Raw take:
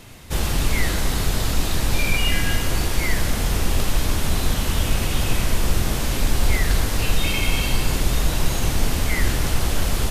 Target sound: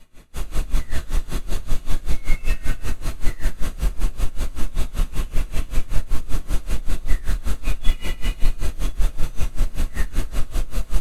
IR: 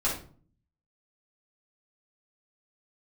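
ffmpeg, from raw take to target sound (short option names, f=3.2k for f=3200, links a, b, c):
-filter_complex "[0:a]equalizer=f=880:t=o:w=0.26:g=-4.5,bandreject=f=5.8k:w=8.2,volume=16dB,asoftclip=hard,volume=-16dB[a];[1:a]atrim=start_sample=2205,asetrate=48510,aresample=44100[b];[a][b]afir=irnorm=-1:irlink=0,asetrate=40517,aresample=44100,aeval=exprs='val(0)*pow(10,-21*(0.5-0.5*cos(2*PI*5.2*n/s))/20)':c=same,volume=-11dB"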